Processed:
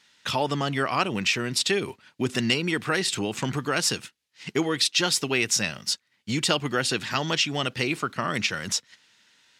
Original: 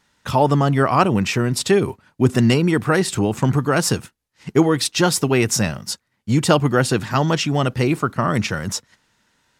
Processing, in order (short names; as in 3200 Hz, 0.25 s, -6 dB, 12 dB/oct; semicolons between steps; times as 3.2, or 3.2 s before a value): weighting filter D; compressor 1.5:1, threshold -26 dBFS, peak gain reduction 7 dB; gain -4 dB